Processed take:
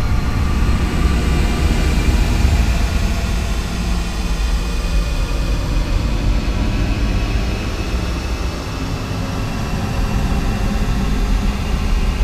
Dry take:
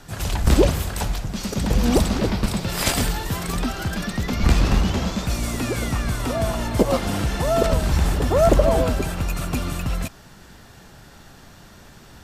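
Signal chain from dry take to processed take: rattling part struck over -12 dBFS, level -16 dBFS; Paulstretch 37×, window 0.10 s, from 4.45; gain -1 dB

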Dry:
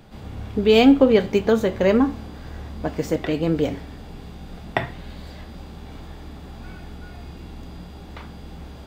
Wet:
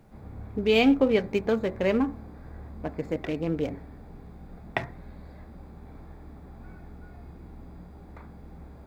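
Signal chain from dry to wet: Wiener smoothing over 15 samples; bit-crush 11-bit; bell 2400 Hz +6 dB 0.59 oct; gain -7 dB

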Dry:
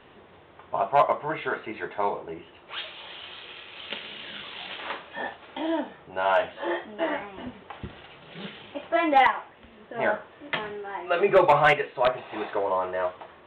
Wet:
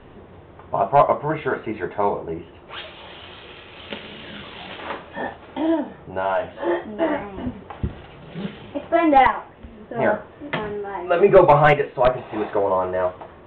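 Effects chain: tilt -3 dB/oct; 5.74–6.67 compressor 2:1, threshold -26 dBFS, peak gain reduction 6 dB; gain +4 dB

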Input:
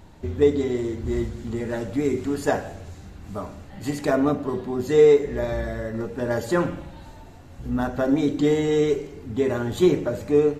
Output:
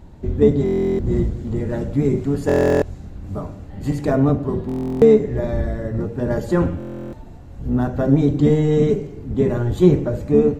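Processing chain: octaver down 1 oct, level 0 dB; tilt shelf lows +4.5 dB, about 850 Hz; stuck buffer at 0.64/2.47/4.67/6.78, samples 1024, times 14

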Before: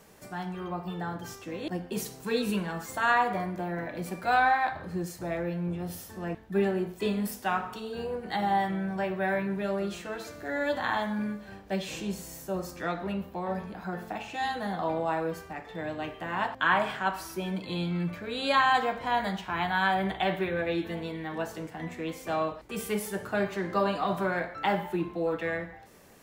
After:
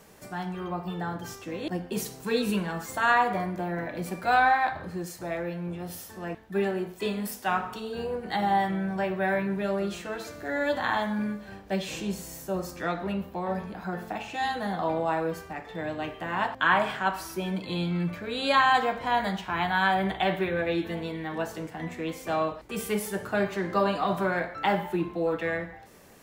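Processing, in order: 4.9–7.48 low shelf 330 Hz -6 dB; gain +2 dB

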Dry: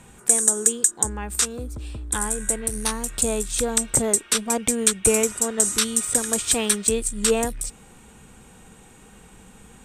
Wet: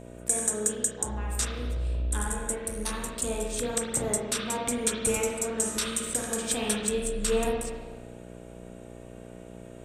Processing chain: spring tank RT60 1.3 s, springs 33/49 ms, chirp 45 ms, DRR -2.5 dB; buzz 60 Hz, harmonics 11, -36 dBFS -1 dB/oct; gain -9 dB

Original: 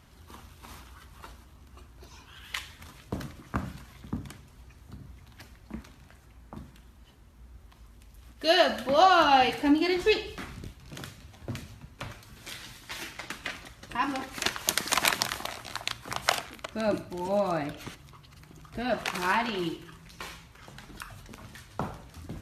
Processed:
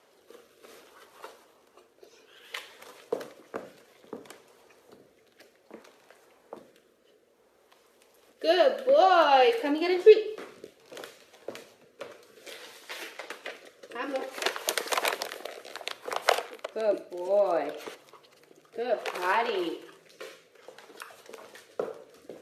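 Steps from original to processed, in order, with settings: rotary speaker horn 0.6 Hz; dynamic EQ 6600 Hz, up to -4 dB, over -50 dBFS, Q 0.88; resonant high-pass 470 Hz, resonance Q 4.9

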